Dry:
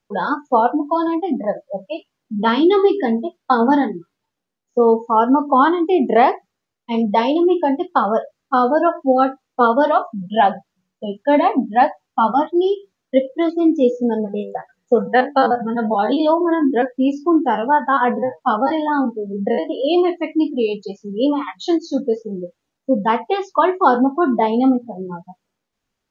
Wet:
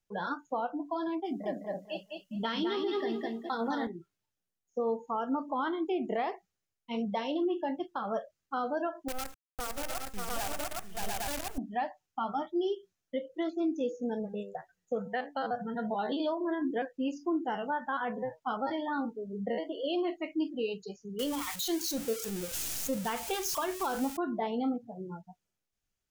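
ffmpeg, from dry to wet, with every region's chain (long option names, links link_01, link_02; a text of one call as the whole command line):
ffmpeg -i in.wav -filter_complex "[0:a]asettb=1/sr,asplit=3[link_01][link_02][link_03];[link_01]atrim=end=1.254[link_04];[link_02]atrim=start=1.25:end=3.87,asetpts=PTS-STARTPTS,afade=type=in:duration=0.004:curve=qsin,afade=type=out:start_time=2.616:duration=0.004:curve=qsin,highshelf=frequency=4200:gain=11.5,aecho=1:1:207|414|621:0.668|0.14|0.0295,atrim=end_sample=115542[link_05];[link_03]atrim=start=3.866[link_06];[link_04][link_05]acrossfade=duration=0.004:curve1=hsin:curve2=qsin[link_07];[link_07][link_06]acrossfade=duration=0.004:curve1=qsin:curve2=hsin,asettb=1/sr,asplit=3[link_08][link_09][link_10];[link_08]atrim=end=9.084[link_11];[link_09]atrim=start=9.08:end=11.58,asetpts=PTS-STARTPTS,afade=type=in:duration=0.004:curve=qsin,afade=type=out:start_time=2.496:duration=0.004:curve=qsin,acrusher=bits=3:dc=4:mix=0:aa=0.000001,aecho=1:1:581|699|814:0.211|0.398|0.335,atrim=end_sample=110250[link_12];[link_10]atrim=start=11.576[link_13];[link_11][link_12]acrossfade=duration=0.004:curve1=hsin:curve2=qsin[link_14];[link_14][link_13]acrossfade=duration=0.004:curve1=qsin:curve2=hsin,asettb=1/sr,asplit=3[link_15][link_16][link_17];[link_15]atrim=end=21.194[link_18];[link_16]atrim=start=21.19:end=24.17,asetpts=PTS-STARTPTS,afade=type=in:duration=0.004:curve=qsin,afade=type=out:start_time=2.976:duration=0.004:curve=qsin,aeval=exprs='val(0)+0.5*0.0398*sgn(val(0))':channel_layout=same,highshelf=frequency=2800:gain=10[link_19];[link_17]atrim=start=24.166[link_20];[link_18][link_19]acrossfade=duration=0.004:curve1=hsin:curve2=qsin[link_21];[link_21][link_20]acrossfade=duration=0.004:curve1=qsin:curve2=hsin,equalizer=frequency=125:width_type=o:width=1:gain=-4,equalizer=frequency=250:width_type=o:width=1:gain=-10,equalizer=frequency=500:width_type=o:width=1:gain=-7,equalizer=frequency=1000:width_type=o:width=1:gain=-10,equalizer=frequency=2000:width_type=o:width=1:gain=-5,equalizer=frequency=4000:width_type=o:width=1:gain=-6,alimiter=limit=-20dB:level=0:latency=1:release=182,volume=-3.5dB" out.wav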